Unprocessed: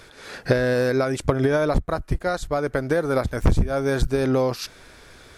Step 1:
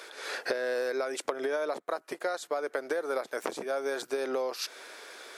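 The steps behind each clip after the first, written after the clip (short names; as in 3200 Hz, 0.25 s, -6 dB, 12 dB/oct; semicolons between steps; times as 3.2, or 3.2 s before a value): HPF 380 Hz 24 dB/oct; compressor 4:1, threshold -32 dBFS, peak gain reduction 14 dB; gain +2 dB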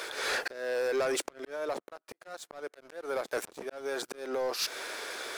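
auto swell 0.591 s; sample leveller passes 3; gain -3.5 dB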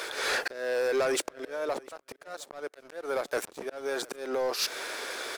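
echo 0.712 s -23.5 dB; gain +2.5 dB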